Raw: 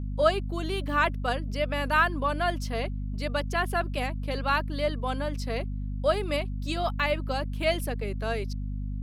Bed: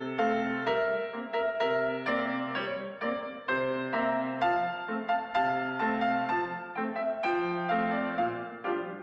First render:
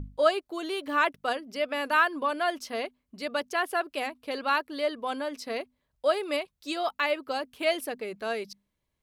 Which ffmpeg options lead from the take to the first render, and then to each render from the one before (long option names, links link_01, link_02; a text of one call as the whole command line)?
ffmpeg -i in.wav -af "bandreject=frequency=50:width_type=h:width=6,bandreject=frequency=100:width_type=h:width=6,bandreject=frequency=150:width_type=h:width=6,bandreject=frequency=200:width_type=h:width=6,bandreject=frequency=250:width_type=h:width=6" out.wav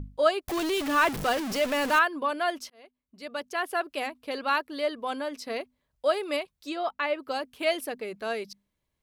ffmpeg -i in.wav -filter_complex "[0:a]asettb=1/sr,asplit=3[link_01][link_02][link_03];[link_01]atrim=end=0.484[link_04];[link_02]atrim=start=0.48:end=1.99,asetpts=PTS-STARTPTS,afade=type=in:duration=0.004:curve=qsin,afade=type=out:start_time=1.506:duration=0.004:curve=qsin,aeval=exprs='val(0)+0.5*0.0422*sgn(val(0))':channel_layout=same[link_05];[link_03]atrim=start=1.986[link_06];[link_04][link_05]acrossfade=duration=0.004:curve1=hsin:curve2=qsin[link_07];[link_07][link_06]acrossfade=duration=0.004:curve1=qsin:curve2=hsin,asplit=3[link_08][link_09][link_10];[link_08]afade=type=out:start_time=6.68:duration=0.02[link_11];[link_09]lowpass=frequency=2200:poles=1,afade=type=in:start_time=6.68:duration=0.02,afade=type=out:start_time=7.18:duration=0.02[link_12];[link_10]afade=type=in:start_time=7.18:duration=0.02[link_13];[link_11][link_12][link_13]amix=inputs=3:normalize=0,asplit=2[link_14][link_15];[link_14]atrim=end=2.7,asetpts=PTS-STARTPTS,afade=type=out:start_time=2.696:duration=0.004:curve=hsin[link_16];[link_15]atrim=start=2.7,asetpts=PTS-STARTPTS,afade=type=in:duration=1.12[link_17];[link_16][link_17]concat=n=2:v=0:a=1" out.wav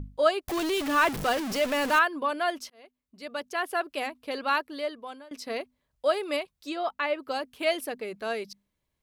ffmpeg -i in.wav -filter_complex "[0:a]asplit=2[link_01][link_02];[link_01]atrim=end=5.31,asetpts=PTS-STARTPTS,afade=type=out:start_time=4.6:duration=0.71:silence=0.0794328[link_03];[link_02]atrim=start=5.31,asetpts=PTS-STARTPTS,afade=type=in:duration=0.004:curve=hsin:silence=0.0794328[link_04];[link_03][link_04]concat=n=2:v=0:a=1" out.wav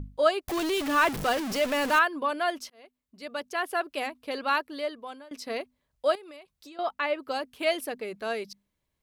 ffmpeg -i in.wav -filter_complex "[0:a]asettb=1/sr,asplit=3[link_01][link_02][link_03];[link_01]atrim=end=6.154[link_04];[link_02]atrim=start=6.15:end=6.79,asetpts=PTS-STARTPTS,afade=type=in:duration=0.004:curve=qsin,afade=type=out:start_time=0.636:duration=0.004:curve=qsin,acompressor=threshold=-45dB:ratio=6:attack=3.2:release=140:knee=1:detection=peak[link_05];[link_03]atrim=start=6.786[link_06];[link_04][link_05]acrossfade=duration=0.004:curve1=hsin:curve2=qsin[link_07];[link_07][link_06]acrossfade=duration=0.004:curve1=qsin:curve2=hsin" out.wav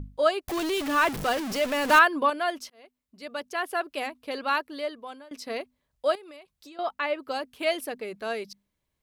ffmpeg -i in.wav -filter_complex "[0:a]asettb=1/sr,asplit=3[link_01][link_02][link_03];[link_01]atrim=end=1.894[link_04];[link_02]atrim=start=1.89:end=2.3,asetpts=PTS-STARTPTS,afade=type=in:duration=0.004:curve=qsin,afade=type=out:start_time=0.406:duration=0.004:curve=qsin,acontrast=30[link_05];[link_03]atrim=start=2.296[link_06];[link_04][link_05]acrossfade=duration=0.004:curve1=hsin:curve2=qsin[link_07];[link_07][link_06]acrossfade=duration=0.004:curve1=qsin:curve2=hsin" out.wav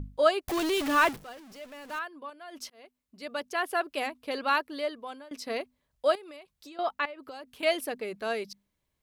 ffmpeg -i in.wav -filter_complex "[0:a]asettb=1/sr,asplit=3[link_01][link_02][link_03];[link_01]atrim=end=7.054[link_04];[link_02]atrim=start=7.05:end=7.63,asetpts=PTS-STARTPTS,afade=type=in:duration=0.004:curve=qsin,afade=type=out:start_time=0.576:duration=0.004:curve=qsin,acompressor=threshold=-39dB:ratio=8:attack=3.2:release=140:knee=1:detection=peak[link_05];[link_03]atrim=start=7.626[link_06];[link_04][link_05]acrossfade=duration=0.004:curve1=hsin:curve2=qsin[link_07];[link_07][link_06]acrossfade=duration=0.004:curve1=qsin:curve2=hsin,asplit=3[link_08][link_09][link_10];[link_08]atrim=end=1.19,asetpts=PTS-STARTPTS,afade=type=out:start_time=1.06:duration=0.13:silence=0.11885[link_11];[link_09]atrim=start=1.19:end=2.5,asetpts=PTS-STARTPTS,volume=-18.5dB[link_12];[link_10]atrim=start=2.5,asetpts=PTS-STARTPTS,afade=type=in:duration=0.13:silence=0.11885[link_13];[link_11][link_12][link_13]concat=n=3:v=0:a=1" out.wav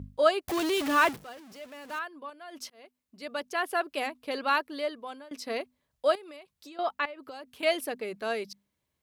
ffmpeg -i in.wav -af "highpass=67" out.wav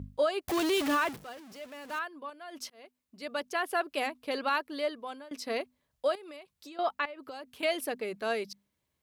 ffmpeg -i in.wav -af "alimiter=limit=-19dB:level=0:latency=1:release=148" out.wav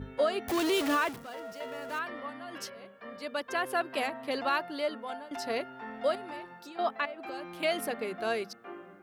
ffmpeg -i in.wav -i bed.wav -filter_complex "[1:a]volume=-13.5dB[link_01];[0:a][link_01]amix=inputs=2:normalize=0" out.wav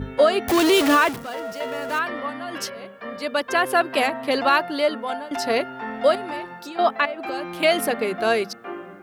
ffmpeg -i in.wav -af "volume=11dB" out.wav